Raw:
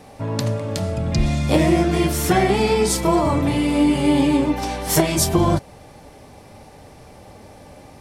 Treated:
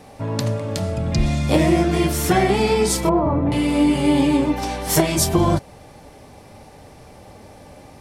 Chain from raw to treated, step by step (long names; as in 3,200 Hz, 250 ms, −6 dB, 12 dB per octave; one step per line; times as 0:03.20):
0:03.09–0:03.52: low-pass filter 1,100 Hz 12 dB per octave